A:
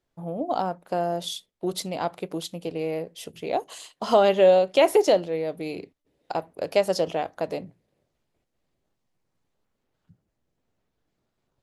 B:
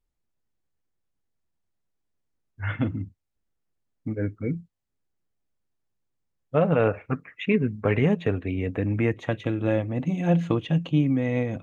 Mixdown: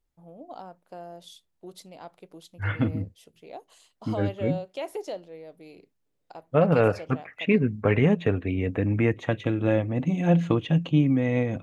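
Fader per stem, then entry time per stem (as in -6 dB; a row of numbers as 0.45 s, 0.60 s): -15.5 dB, +1.0 dB; 0.00 s, 0.00 s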